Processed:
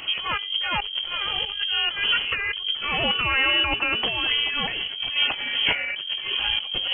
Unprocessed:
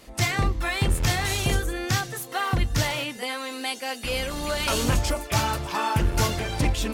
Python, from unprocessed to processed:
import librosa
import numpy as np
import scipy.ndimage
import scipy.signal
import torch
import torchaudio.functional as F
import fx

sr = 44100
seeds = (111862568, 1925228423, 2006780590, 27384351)

y = fx.high_shelf(x, sr, hz=2500.0, db=-7.0)
y = fx.over_compress(y, sr, threshold_db=-35.0, ratio=-1.0)
y = fx.freq_invert(y, sr, carrier_hz=3200)
y = y * 10.0 ** (8.0 / 20.0)